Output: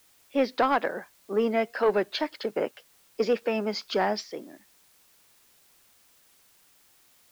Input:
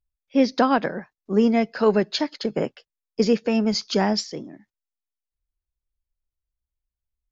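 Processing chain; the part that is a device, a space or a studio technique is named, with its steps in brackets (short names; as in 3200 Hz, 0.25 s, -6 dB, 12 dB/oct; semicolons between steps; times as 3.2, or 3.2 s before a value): tape answering machine (BPF 400–3200 Hz; soft clip -14.5 dBFS, distortion -17 dB; wow and flutter; white noise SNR 31 dB)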